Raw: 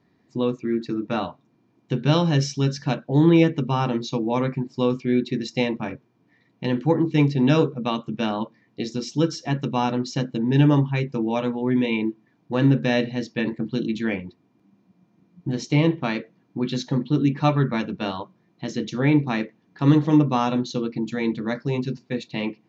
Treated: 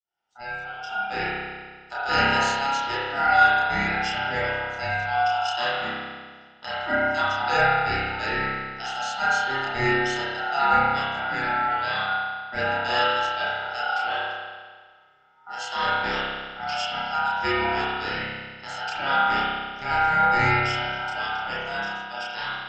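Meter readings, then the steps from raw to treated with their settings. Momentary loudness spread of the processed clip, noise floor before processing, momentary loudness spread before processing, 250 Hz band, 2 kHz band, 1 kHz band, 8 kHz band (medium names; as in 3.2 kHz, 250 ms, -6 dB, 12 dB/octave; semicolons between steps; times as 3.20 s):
13 LU, -64 dBFS, 12 LU, -15.5 dB, +10.5 dB, +8.5 dB, no reading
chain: fade-in on the opening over 0.89 s; high-pass 510 Hz 6 dB/octave; peaking EQ 4.2 kHz +10 dB 0.48 oct; chorus voices 6, 0.16 Hz, delay 30 ms, depth 3.3 ms; ring modulator 1.1 kHz; spring tank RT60 1.6 s, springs 30 ms, chirp 60 ms, DRR -7.5 dB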